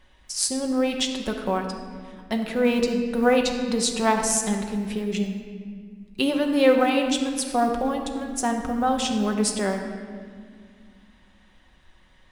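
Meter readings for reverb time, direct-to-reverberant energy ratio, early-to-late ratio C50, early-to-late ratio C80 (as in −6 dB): 2.0 s, 2.0 dB, 5.5 dB, 6.5 dB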